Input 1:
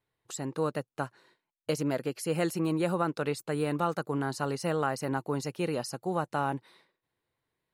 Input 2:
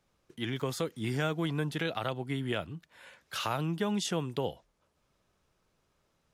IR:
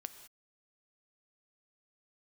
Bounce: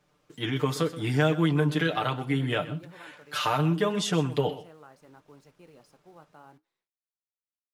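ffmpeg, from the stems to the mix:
-filter_complex "[0:a]acrusher=bits=8:dc=4:mix=0:aa=0.000001,volume=0.133,asplit=2[s0][s1];[s1]volume=0.0668[s2];[1:a]aecho=1:1:6.7:0.84,acontrast=86,volume=1,asplit=3[s3][s4][s5];[s4]volume=0.398[s6];[s5]volume=0.2[s7];[2:a]atrim=start_sample=2205[s8];[s2][s6]amix=inputs=2:normalize=0[s9];[s9][s8]afir=irnorm=-1:irlink=0[s10];[s7]aecho=0:1:126:1[s11];[s0][s3][s10][s11]amix=inputs=4:normalize=0,lowshelf=f=67:g=-11,flanger=delay=4.9:depth=9.1:regen=-70:speed=0.73:shape=triangular,highshelf=f=4200:g=-5.5"

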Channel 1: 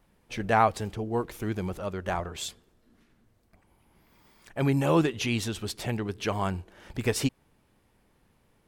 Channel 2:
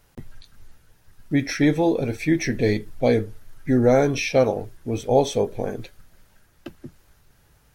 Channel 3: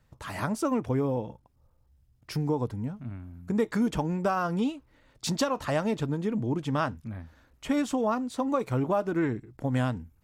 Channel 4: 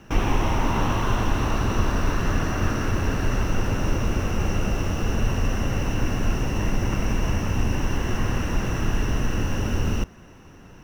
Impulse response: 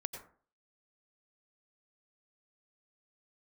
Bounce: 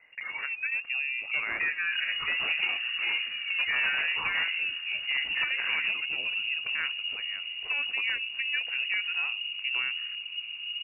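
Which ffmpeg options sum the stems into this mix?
-filter_complex "[0:a]adelay=900,volume=0.237[s0];[1:a]equalizer=f=780:t=o:w=0.44:g=-13,acompressor=threshold=0.0158:ratio=2,aeval=exprs='val(0)*sin(2*PI*520*n/s+520*0.65/0.52*sin(2*PI*0.52*n/s))':c=same,volume=1.41[s1];[2:a]volume=0.562[s2];[3:a]afwtdn=0.0398,adelay=1800,volume=0.188[s3];[s0][s1][s2][s3]amix=inputs=4:normalize=0,aeval=exprs='0.0891*(abs(mod(val(0)/0.0891+3,4)-2)-1)':c=same,lowpass=f=2500:t=q:w=0.5098,lowpass=f=2500:t=q:w=0.6013,lowpass=f=2500:t=q:w=0.9,lowpass=f=2500:t=q:w=2.563,afreqshift=-2900"

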